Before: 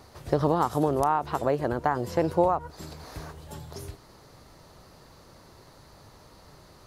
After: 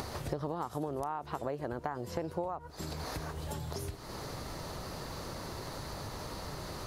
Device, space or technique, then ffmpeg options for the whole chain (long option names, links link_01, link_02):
upward and downward compression: -af "acompressor=mode=upward:threshold=-31dB:ratio=2.5,acompressor=threshold=-36dB:ratio=4,volume=1dB"